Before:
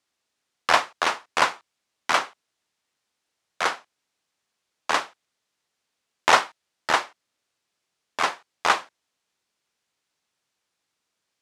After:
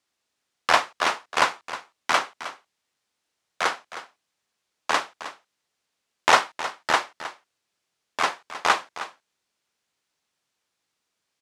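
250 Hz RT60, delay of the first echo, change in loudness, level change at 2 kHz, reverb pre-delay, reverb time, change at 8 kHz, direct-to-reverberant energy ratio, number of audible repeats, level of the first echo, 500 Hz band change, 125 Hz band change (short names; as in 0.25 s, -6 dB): none, 0.313 s, -0.5 dB, 0.0 dB, none, none, 0.0 dB, none, 1, -13.5 dB, 0.0 dB, 0.0 dB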